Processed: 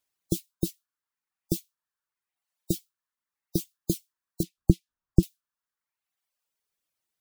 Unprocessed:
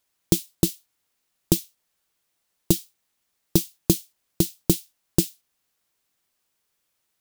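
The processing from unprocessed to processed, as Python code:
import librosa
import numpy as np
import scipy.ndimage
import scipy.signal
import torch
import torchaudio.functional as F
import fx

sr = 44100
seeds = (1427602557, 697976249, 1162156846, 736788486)

y = fx.spec_gate(x, sr, threshold_db=-25, keep='strong')
y = fx.dereverb_blind(y, sr, rt60_s=1.1)
y = fx.riaa(y, sr, side='playback', at=(4.43, 5.23))
y = y * librosa.db_to_amplitude(-7.0)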